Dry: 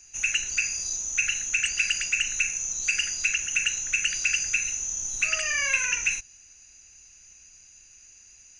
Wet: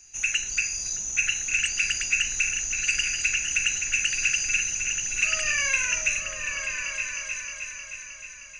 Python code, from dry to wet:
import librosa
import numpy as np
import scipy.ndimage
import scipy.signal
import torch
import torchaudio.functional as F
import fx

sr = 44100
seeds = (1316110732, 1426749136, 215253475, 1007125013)

y = fx.echo_opening(x, sr, ms=311, hz=200, octaves=2, feedback_pct=70, wet_db=0)